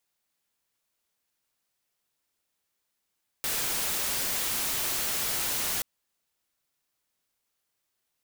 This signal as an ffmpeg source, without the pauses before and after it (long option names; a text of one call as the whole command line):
ffmpeg -f lavfi -i "anoisesrc=color=white:amplitude=0.058:duration=2.38:sample_rate=44100:seed=1" out.wav